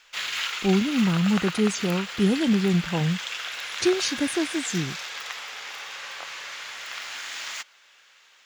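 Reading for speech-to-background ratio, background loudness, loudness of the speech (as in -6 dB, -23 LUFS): 7.0 dB, -31.5 LUFS, -24.5 LUFS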